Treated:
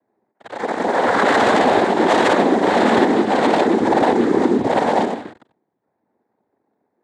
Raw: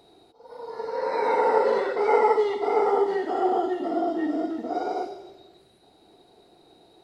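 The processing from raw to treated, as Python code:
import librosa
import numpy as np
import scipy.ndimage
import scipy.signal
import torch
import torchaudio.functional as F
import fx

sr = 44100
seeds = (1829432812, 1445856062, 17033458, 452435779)

y = scipy.signal.sosfilt(scipy.signal.butter(4, 1600.0, 'lowpass', fs=sr, output='sos'), x)
y = fx.leveller(y, sr, passes=5)
y = fx.noise_vocoder(y, sr, seeds[0], bands=6)
y = y * 10.0 ** (-3.5 / 20.0)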